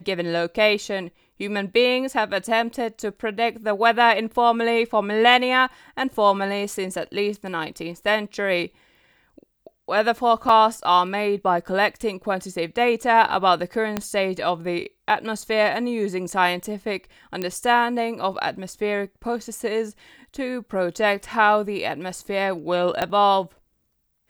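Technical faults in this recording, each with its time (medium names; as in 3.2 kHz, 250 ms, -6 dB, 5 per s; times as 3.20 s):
10.49 s: dropout 3.4 ms
13.97 s: pop -9 dBFS
17.42 s: pop -13 dBFS
23.02 s: pop -9 dBFS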